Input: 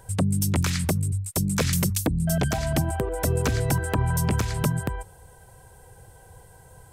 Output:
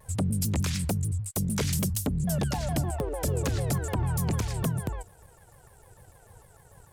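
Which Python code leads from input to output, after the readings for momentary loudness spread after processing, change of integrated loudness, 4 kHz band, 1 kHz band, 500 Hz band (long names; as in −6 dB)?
3 LU, −4.0 dB, −4.5 dB, −5.5 dB, −4.5 dB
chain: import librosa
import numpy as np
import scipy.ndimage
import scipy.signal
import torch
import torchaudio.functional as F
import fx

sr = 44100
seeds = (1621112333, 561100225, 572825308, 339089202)

y = fx.dynamic_eq(x, sr, hz=1500.0, q=1.2, threshold_db=-45.0, ratio=4.0, max_db=-5)
y = fx.leveller(y, sr, passes=1)
y = fx.vibrato_shape(y, sr, shape='saw_down', rate_hz=6.7, depth_cents=250.0)
y = F.gain(torch.from_numpy(y), -6.5).numpy()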